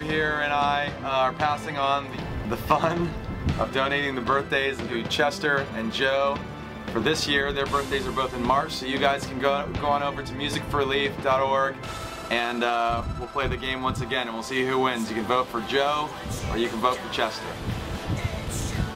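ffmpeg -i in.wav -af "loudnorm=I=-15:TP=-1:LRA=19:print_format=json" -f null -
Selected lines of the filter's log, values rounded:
"input_i" : "-25.9",
"input_tp" : "-5.9",
"input_lra" : "3.7",
"input_thresh" : "-35.9",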